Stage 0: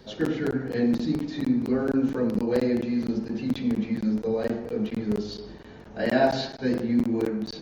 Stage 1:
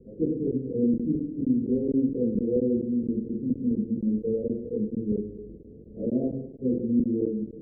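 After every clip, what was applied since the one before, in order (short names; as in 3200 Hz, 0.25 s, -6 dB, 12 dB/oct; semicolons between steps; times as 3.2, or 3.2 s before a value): Chebyshev low-pass 500 Hz, order 5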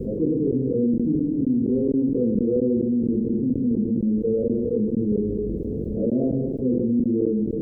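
fast leveller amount 70%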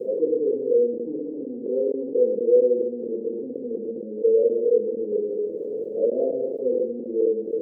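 resonant high-pass 490 Hz, resonance Q 4.1; gain -4.5 dB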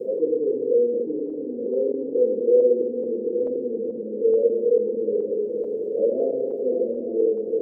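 regenerating reverse delay 0.434 s, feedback 73%, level -10 dB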